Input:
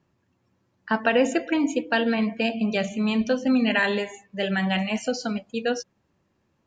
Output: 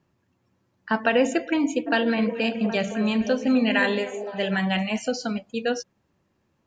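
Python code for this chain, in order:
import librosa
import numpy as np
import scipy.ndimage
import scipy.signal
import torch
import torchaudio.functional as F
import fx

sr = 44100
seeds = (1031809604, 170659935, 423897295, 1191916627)

y = fx.echo_stepped(x, sr, ms=257, hz=390.0, octaves=0.7, feedback_pct=70, wet_db=-5.0, at=(1.86, 4.6), fade=0.02)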